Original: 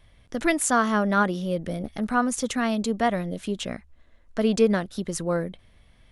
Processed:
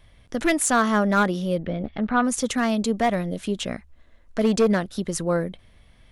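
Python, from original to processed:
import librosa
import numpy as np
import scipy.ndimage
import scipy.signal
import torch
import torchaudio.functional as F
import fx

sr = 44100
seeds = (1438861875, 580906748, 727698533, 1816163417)

y = np.clip(10.0 ** (16.0 / 20.0) * x, -1.0, 1.0) / 10.0 ** (16.0 / 20.0)
y = fx.lowpass(y, sr, hz=3500.0, slope=24, at=(1.58, 2.23), fade=0.02)
y = y * librosa.db_to_amplitude(2.5)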